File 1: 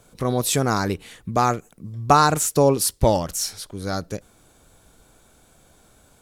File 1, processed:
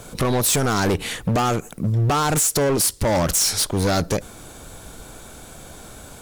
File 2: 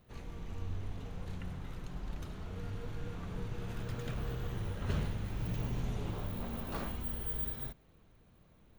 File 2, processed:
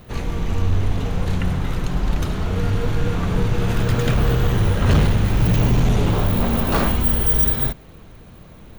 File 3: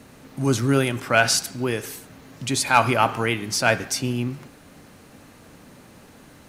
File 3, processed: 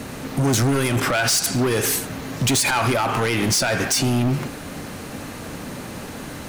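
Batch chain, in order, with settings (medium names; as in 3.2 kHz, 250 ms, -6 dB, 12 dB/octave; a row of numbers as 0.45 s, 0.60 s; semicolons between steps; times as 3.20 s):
dynamic bell 8.3 kHz, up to +4 dB, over -37 dBFS, Q 0.72; compression 4:1, threshold -23 dBFS; peak limiter -19.5 dBFS; hard clipper -31 dBFS; normalise loudness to -20 LUFS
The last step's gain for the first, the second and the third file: +15.0 dB, +20.5 dB, +14.5 dB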